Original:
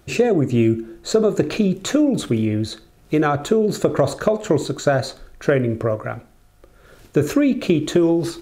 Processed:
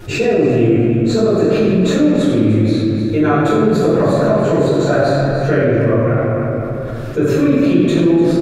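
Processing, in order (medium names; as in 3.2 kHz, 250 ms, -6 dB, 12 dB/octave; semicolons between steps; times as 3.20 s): treble shelf 5.8 kHz -7 dB; delay 299 ms -11.5 dB; reverberation RT60 2.1 s, pre-delay 4 ms, DRR -14 dB; level flattener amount 50%; trim -14.5 dB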